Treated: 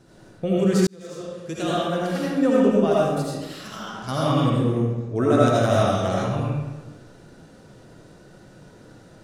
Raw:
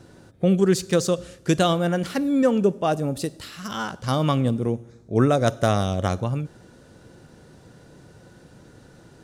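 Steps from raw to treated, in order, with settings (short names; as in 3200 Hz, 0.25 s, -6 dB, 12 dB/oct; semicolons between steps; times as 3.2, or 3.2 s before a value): 3.16–4.04 compressor, threshold -32 dBFS, peak gain reduction 10 dB; flange 0.49 Hz, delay 4.7 ms, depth 7.6 ms, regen -52%; reverb RT60 1.2 s, pre-delay 40 ms, DRR -6 dB; 0.87–2.46 fade in; gain -1 dB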